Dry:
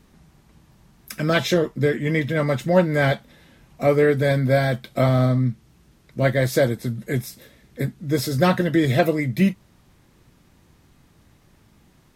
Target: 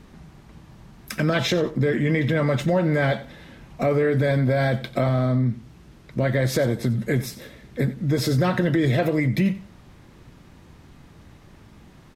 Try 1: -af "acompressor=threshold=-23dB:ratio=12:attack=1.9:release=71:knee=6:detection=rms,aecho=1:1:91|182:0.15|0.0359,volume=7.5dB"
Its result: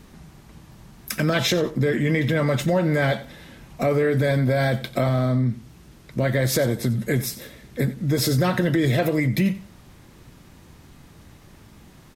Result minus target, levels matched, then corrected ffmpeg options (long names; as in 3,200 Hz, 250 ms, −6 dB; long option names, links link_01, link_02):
4,000 Hz band +2.5 dB
-af "acompressor=threshold=-23dB:ratio=12:attack=1.9:release=71:knee=6:detection=rms,lowpass=frequency=3900:poles=1,aecho=1:1:91|182:0.15|0.0359,volume=7.5dB"